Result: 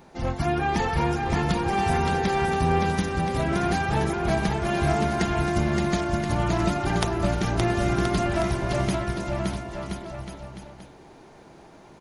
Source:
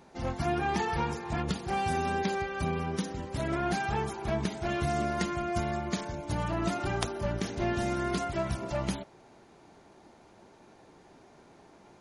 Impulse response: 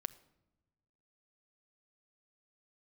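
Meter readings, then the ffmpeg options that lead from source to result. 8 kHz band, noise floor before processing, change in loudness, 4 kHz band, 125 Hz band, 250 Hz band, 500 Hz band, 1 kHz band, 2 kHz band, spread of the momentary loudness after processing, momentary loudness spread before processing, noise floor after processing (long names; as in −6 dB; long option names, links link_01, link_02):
+5.5 dB, −57 dBFS, +7.0 dB, +6.5 dB, +9.0 dB, +7.5 dB, +7.0 dB, +7.0 dB, +7.0 dB, 9 LU, 5 LU, −49 dBFS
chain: -filter_complex "[0:a]highshelf=frequency=8600:gain=9.5,aecho=1:1:570|1026|1391|1683|1916:0.631|0.398|0.251|0.158|0.1,asplit=2[link_01][link_02];[1:a]atrim=start_sample=2205,lowpass=5600,lowshelf=frequency=80:gain=11.5[link_03];[link_02][link_03]afir=irnorm=-1:irlink=0,volume=-1dB[link_04];[link_01][link_04]amix=inputs=2:normalize=0"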